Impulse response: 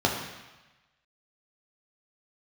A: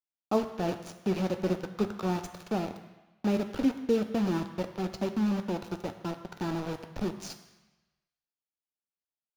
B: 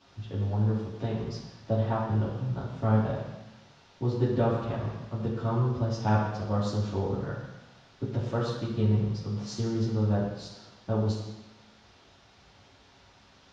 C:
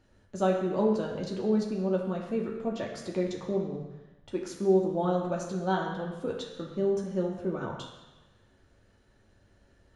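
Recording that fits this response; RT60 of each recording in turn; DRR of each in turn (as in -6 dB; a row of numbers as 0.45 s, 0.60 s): C; 1.1 s, 1.1 s, 1.1 s; 6.5 dB, -9.0 dB, -1.0 dB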